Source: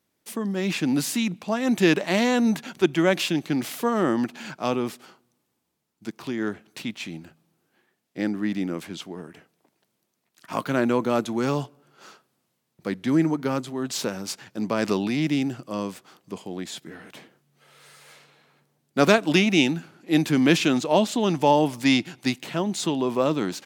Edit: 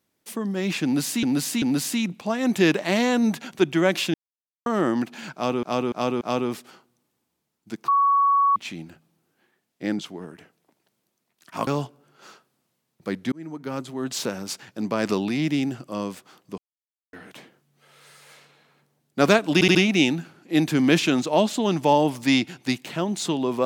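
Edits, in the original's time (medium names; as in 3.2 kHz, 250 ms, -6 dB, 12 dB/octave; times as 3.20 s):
0.84–1.23 s: loop, 3 plays
3.36–3.88 s: mute
4.56–4.85 s: loop, 4 plays
6.23–6.91 s: bleep 1.12 kHz -15.5 dBFS
8.34–8.95 s: delete
10.63–11.46 s: delete
13.11–13.82 s: fade in
16.37–16.92 s: mute
19.33 s: stutter 0.07 s, 4 plays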